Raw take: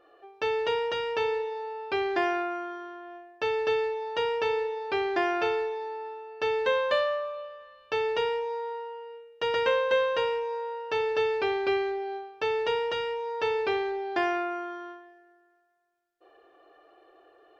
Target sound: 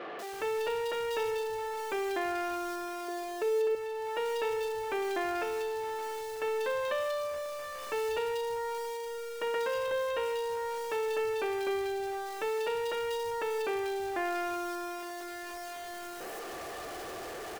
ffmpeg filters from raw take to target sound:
-filter_complex "[0:a]aeval=exprs='val(0)+0.5*0.0335*sgn(val(0))':c=same,asettb=1/sr,asplit=3[a][b][c];[a]atrim=end=3.084[d];[b]atrim=start=3.08:end=3.75,asetpts=PTS-STARTPTS,afade=t=in:d=0.004:c=qsin,afade=t=out:st=0.666:d=0.004:c=qsin,equalizer=f=410:w=3.8:g=14.5[e];[c]atrim=start=3.746[f];[d][e]acrossfade=d=0.004:c1=hsin:c2=qsin[g];[g][f]acrossfade=d=0.004:c1=qsin:c2=hsin,alimiter=limit=-18dB:level=0:latency=1:release=336,acrossover=split=160|3200[h][i][j];[j]adelay=190[k];[h]adelay=330[l];[l][i][k]amix=inputs=3:normalize=0,volume=-5.5dB"

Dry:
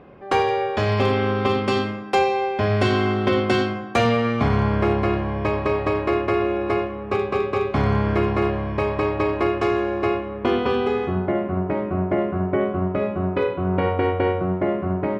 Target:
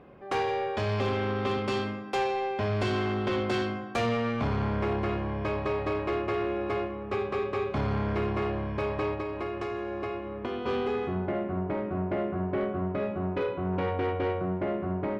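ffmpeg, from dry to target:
-filter_complex "[0:a]bandreject=f=86.42:t=h:w=4,bandreject=f=172.84:t=h:w=4,bandreject=f=259.26:t=h:w=4,bandreject=f=345.68:t=h:w=4,bandreject=f=432.1:t=h:w=4,bandreject=f=518.52:t=h:w=4,bandreject=f=604.94:t=h:w=4,bandreject=f=691.36:t=h:w=4,bandreject=f=777.78:t=h:w=4,bandreject=f=864.2:t=h:w=4,bandreject=f=950.62:t=h:w=4,bandreject=f=1.03704k:t=h:w=4,bandreject=f=1.12346k:t=h:w=4,bandreject=f=1.20988k:t=h:w=4,bandreject=f=1.2963k:t=h:w=4,bandreject=f=1.38272k:t=h:w=4,bandreject=f=1.46914k:t=h:w=4,bandreject=f=1.55556k:t=h:w=4,bandreject=f=1.64198k:t=h:w=4,bandreject=f=1.7284k:t=h:w=4,bandreject=f=1.81482k:t=h:w=4,bandreject=f=1.90124k:t=h:w=4,bandreject=f=1.98766k:t=h:w=4,bandreject=f=2.07408k:t=h:w=4,bandreject=f=2.1605k:t=h:w=4,bandreject=f=2.24692k:t=h:w=4,bandreject=f=2.33334k:t=h:w=4,bandreject=f=2.41976k:t=h:w=4,bandreject=f=2.50618k:t=h:w=4,bandreject=f=2.5926k:t=h:w=4,bandreject=f=2.67902k:t=h:w=4,bandreject=f=2.76544k:t=h:w=4,bandreject=f=2.85186k:t=h:w=4,asplit=3[a][b][c];[a]afade=t=out:st=9.14:d=0.02[d];[b]acompressor=threshold=-24dB:ratio=6,afade=t=in:st=9.14:d=0.02,afade=t=out:st=10.66:d=0.02[e];[c]afade=t=in:st=10.66:d=0.02[f];[d][e][f]amix=inputs=3:normalize=0,asoftclip=type=tanh:threshold=-17dB,volume=-5.5dB"

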